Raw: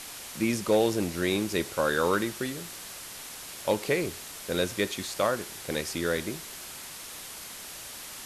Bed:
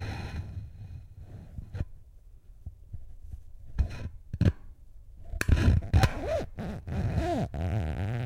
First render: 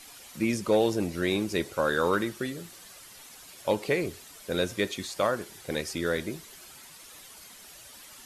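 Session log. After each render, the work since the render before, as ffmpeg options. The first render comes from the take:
-af "afftdn=nr=10:nf=-42"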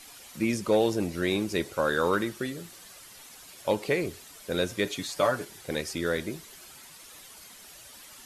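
-filter_complex "[0:a]asettb=1/sr,asplit=3[a][b][c];[a]atrim=end=4.854[d];[b]atrim=start=4.85:end=5.45,asetpts=PTS-STARTPTS,afade=t=in:d=0.004:c=qsin,afade=t=out:st=0.596:d=0.004:c=qsin,aecho=1:1:6.9:0.65,atrim=end_sample=26460[e];[c]atrim=start=5.446[f];[d][e]acrossfade=d=0.004:c1=hsin:c2=qsin[g];[g][f]acrossfade=d=0.004:c1=qsin:c2=hsin"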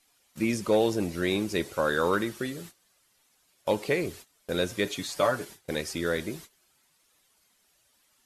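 -af "agate=range=-19dB:threshold=-44dB:ratio=16:detection=peak"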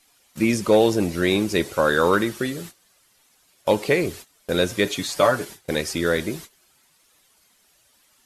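-af "volume=7dB"

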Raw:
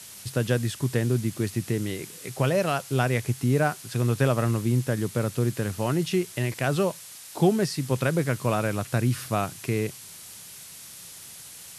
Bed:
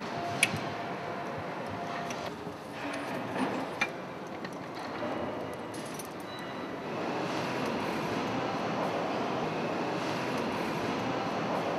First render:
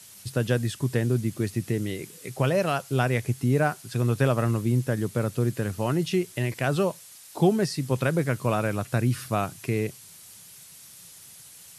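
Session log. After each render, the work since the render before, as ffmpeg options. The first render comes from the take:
-af "afftdn=nr=6:nf=-44"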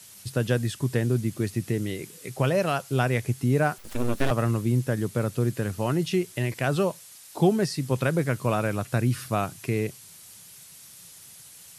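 -filter_complex "[0:a]asettb=1/sr,asplit=3[a][b][c];[a]atrim=end=3.784[d];[b]atrim=start=3.78:end=4.31,asetpts=PTS-STARTPTS,afade=t=in:d=0.004:c=qsin,afade=t=out:st=0.526:d=0.004:c=qsin,aeval=exprs='abs(val(0))':c=same[e];[c]atrim=start=4.306[f];[d][e]acrossfade=d=0.004:c1=hsin:c2=qsin[g];[g][f]acrossfade=d=0.004:c1=qsin:c2=hsin"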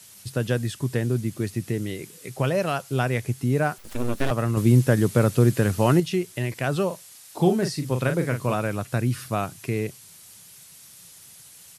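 -filter_complex "[0:a]asplit=3[a][b][c];[a]afade=t=out:st=6.9:d=0.02[d];[b]asplit=2[e][f];[f]adelay=40,volume=-7dB[g];[e][g]amix=inputs=2:normalize=0,afade=t=in:st=6.9:d=0.02,afade=t=out:st=8.53:d=0.02[h];[c]afade=t=in:st=8.53:d=0.02[i];[d][h][i]amix=inputs=3:normalize=0,asplit=3[j][k][l];[j]atrim=end=4.572[m];[k]atrim=start=4.568:end=6.002,asetpts=PTS-STARTPTS,volume=7dB[n];[l]atrim=start=5.998[o];[m][n]acrossfade=d=0.004:c1=hsin:c2=hsin[p];[p][o]acrossfade=d=0.004:c1=hsin:c2=hsin"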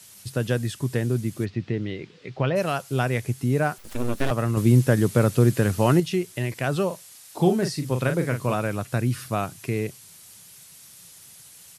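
-filter_complex "[0:a]asplit=3[a][b][c];[a]afade=t=out:st=1.44:d=0.02[d];[b]lowpass=f=4.2k:w=0.5412,lowpass=f=4.2k:w=1.3066,afade=t=in:st=1.44:d=0.02,afade=t=out:st=2.55:d=0.02[e];[c]afade=t=in:st=2.55:d=0.02[f];[d][e][f]amix=inputs=3:normalize=0"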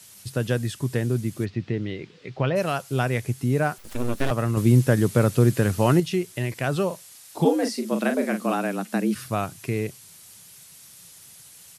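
-filter_complex "[0:a]asplit=3[a][b][c];[a]afade=t=out:st=7.44:d=0.02[d];[b]afreqshift=89,afade=t=in:st=7.44:d=0.02,afade=t=out:st=9.14:d=0.02[e];[c]afade=t=in:st=9.14:d=0.02[f];[d][e][f]amix=inputs=3:normalize=0"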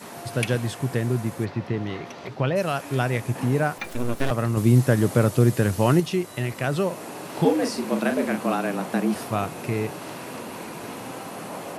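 -filter_complex "[1:a]volume=-3.5dB[a];[0:a][a]amix=inputs=2:normalize=0"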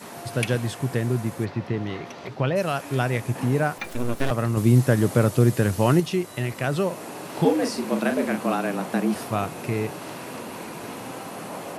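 -af anull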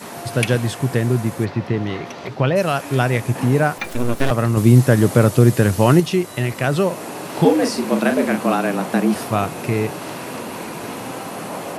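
-af "volume=6dB,alimiter=limit=-1dB:level=0:latency=1"

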